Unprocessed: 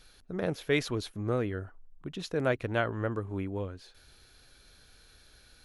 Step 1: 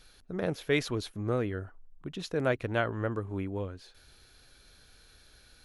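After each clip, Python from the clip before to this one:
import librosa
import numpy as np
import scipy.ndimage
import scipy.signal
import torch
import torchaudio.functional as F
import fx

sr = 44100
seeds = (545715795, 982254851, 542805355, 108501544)

y = x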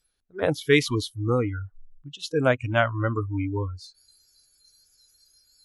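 y = fx.rider(x, sr, range_db=3, speed_s=2.0)
y = fx.noise_reduce_blind(y, sr, reduce_db=29)
y = F.gain(torch.from_numpy(y), 8.5).numpy()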